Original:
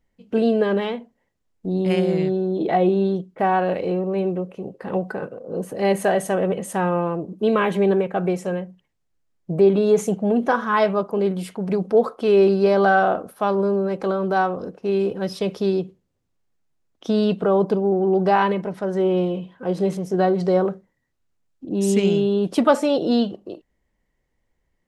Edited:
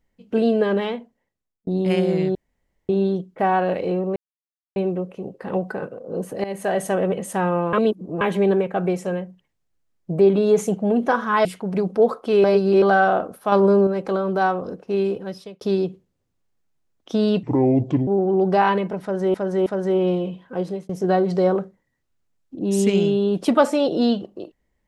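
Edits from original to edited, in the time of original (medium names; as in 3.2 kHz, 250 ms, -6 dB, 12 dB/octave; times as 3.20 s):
0.94–1.67 s: fade out
2.35–2.89 s: room tone
4.16 s: insert silence 0.60 s
5.84–6.25 s: fade in, from -16 dB
7.13–7.61 s: reverse
10.85–11.40 s: delete
12.39–12.77 s: reverse
13.47–13.82 s: gain +5 dB
14.94–15.56 s: fade out
17.38–17.81 s: speed 67%
18.76–19.08 s: loop, 3 plays
19.64–19.99 s: fade out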